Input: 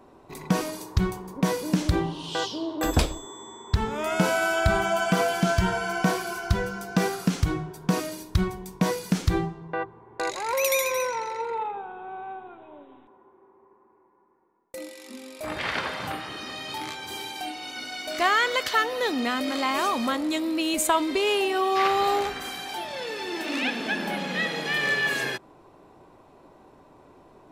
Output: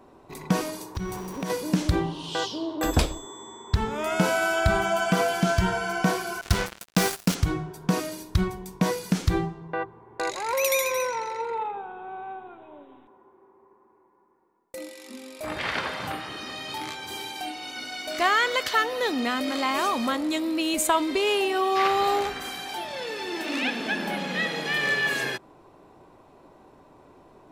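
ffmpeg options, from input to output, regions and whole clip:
ffmpeg -i in.wav -filter_complex "[0:a]asettb=1/sr,asplit=3[link_01][link_02][link_03];[link_01]atrim=end=0.954[link_04];[link_02]atrim=start=0.95:end=1.5,asetpts=PTS-STARTPTS,afade=type=in:duration=0.004:curve=qsin,afade=type=out:start_time=0.546:duration=0.004:curve=qsin,aeval=exprs='val(0)+0.5*0.0133*sgn(val(0))':channel_layout=same,acompressor=threshold=-28dB:ratio=4:attack=3.2:release=140:knee=1:detection=peak,aeval=exprs='val(0)+0.00251*sin(2*PI*5800*n/s)':channel_layout=same[link_05];[link_03]atrim=start=1.496[link_06];[link_04][link_05]acrossfade=duration=0.004:curve1=hsin:curve2=qsin[link_07];[link_07][link_06]acrossfade=duration=0.004:curve1=qsin:curve2=hsin,asettb=1/sr,asplit=3[link_08][link_09][link_10];[link_08]atrim=end=6.414[link_11];[link_09]atrim=start=6.41:end=7.35,asetpts=PTS-STARTPTS,afade=type=in:duration=0.004:curve=qsin,afade=type=out:start_time=0.936:duration=0.004:curve=qsin,highshelf=frequency=2800:gain=8,acrusher=bits=3:mix=0:aa=0.5[link_12];[link_10]atrim=start=7.346[link_13];[link_11][link_12]acrossfade=duration=0.004:curve1=hsin:curve2=qsin[link_14];[link_14][link_13]acrossfade=duration=0.004:curve1=qsin:curve2=hsin" out.wav

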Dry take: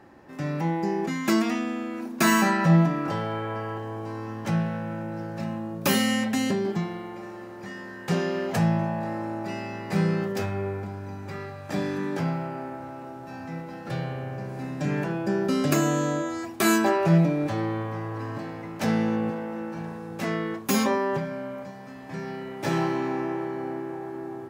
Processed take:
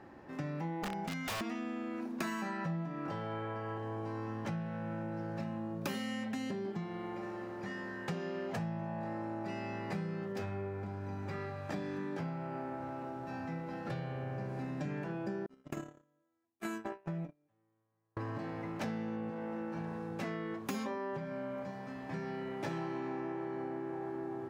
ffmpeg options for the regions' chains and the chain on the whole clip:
ffmpeg -i in.wav -filter_complex "[0:a]asettb=1/sr,asplit=3[link_01][link_02][link_03];[link_01]atrim=end=0.824[link_04];[link_02]atrim=start=0.82:end=1.41,asetpts=PTS-STARTPTS,afade=type=in:duration=0.004:curve=qsin,afade=type=out:start_time=0.586:duration=0.004:curve=qsin,equalizer=frequency=88:width_type=o:width=1.3:gain=5,aecho=1:1:1.4:0.75,atrim=end_sample=26019,aeval=exprs='(mod(9.44*val(0)+1,2)-1)/9.44':channel_layout=same[link_05];[link_03]atrim=start=1.406[link_06];[link_04][link_05]acrossfade=duration=0.004:curve1=hsin:curve2=qsin[link_07];[link_07][link_06]acrossfade=duration=0.004:curve1=qsin:curve2=hsin,asettb=1/sr,asplit=3[link_08][link_09][link_10];[link_08]atrim=end=15.464[link_11];[link_09]atrim=start=15.46:end=18.17,asetpts=PTS-STARTPTS,afade=type=in:duration=0.004:curve=qsin,afade=type=out:start_time=2.706:duration=0.004:curve=qsin,agate=range=-48dB:threshold=-20dB:ratio=16:release=100:detection=peak,equalizer=frequency=4500:width=3:gain=-7.5,acompressor=threshold=-27dB:ratio=6:attack=3.2:release=140:knee=1:detection=peak[link_12];[link_10]atrim=start=18.166[link_13];[link_11][link_12]acrossfade=duration=0.004:curve1=hsin:curve2=qsin[link_14];[link_14][link_13]acrossfade=duration=0.004:curve1=qsin:curve2=hsin,highshelf=frequency=6300:gain=-10.5,acompressor=threshold=-34dB:ratio=6,volume=-2dB" out.wav

